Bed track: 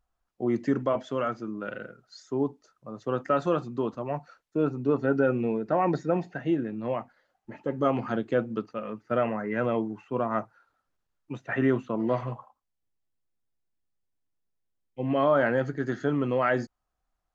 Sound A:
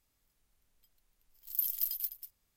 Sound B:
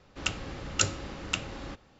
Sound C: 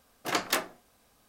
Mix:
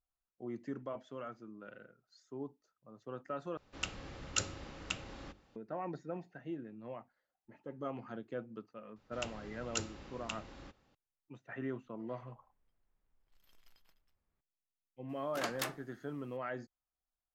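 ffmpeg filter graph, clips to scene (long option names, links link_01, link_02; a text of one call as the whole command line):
ffmpeg -i bed.wav -i cue0.wav -i cue1.wav -i cue2.wav -filter_complex "[2:a]asplit=2[link_01][link_02];[0:a]volume=-16dB[link_03];[link_01]bandreject=frequency=50:width_type=h:width=6,bandreject=frequency=100:width_type=h:width=6,bandreject=frequency=150:width_type=h:width=6,bandreject=frequency=200:width_type=h:width=6,bandreject=frequency=250:width_type=h:width=6,bandreject=frequency=300:width_type=h:width=6,bandreject=frequency=350:width_type=h:width=6,bandreject=frequency=400:width_type=h:width=6[link_04];[1:a]lowpass=1600[link_05];[link_03]asplit=2[link_06][link_07];[link_06]atrim=end=3.574[link_08];[link_04]atrim=end=1.99,asetpts=PTS-STARTPTS,volume=-8dB[link_09];[link_07]atrim=start=5.556[link_10];[link_02]atrim=end=1.99,asetpts=PTS-STARTPTS,volume=-12dB,afade=type=in:duration=0.004:curve=hsin,afade=type=out:start_time=1.986:duration=0.004:curve=hsin,adelay=8960[link_11];[link_05]atrim=end=2.56,asetpts=PTS-STARTPTS,volume=-4dB,afade=type=in:duration=0.004:curve=hsin,afade=type=out:start_time=2.556:duration=0.004:curve=hsin,adelay=11850[link_12];[3:a]atrim=end=1.28,asetpts=PTS-STARTPTS,volume=-10.5dB,afade=type=in:duration=0.004:curve=hsin,afade=type=out:start_time=1.276:duration=0.004:curve=hsin,adelay=15090[link_13];[link_08][link_09]acrossfade=duration=0.004:curve1=hsin:curve2=hsin[link_14];[link_14][link_10]acrossfade=duration=0.004:curve1=hsin:curve2=hsin[link_15];[link_15][link_11][link_12][link_13]amix=inputs=4:normalize=0" out.wav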